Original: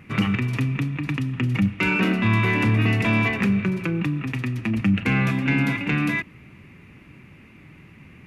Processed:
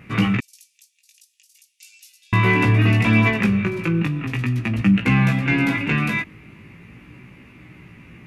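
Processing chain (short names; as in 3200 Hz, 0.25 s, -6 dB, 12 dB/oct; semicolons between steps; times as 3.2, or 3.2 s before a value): chorus 0.4 Hz, delay 16 ms, depth 2.9 ms; 0.4–2.33 inverse Chebyshev high-pass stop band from 1000 Hz, stop band 80 dB; gain +6 dB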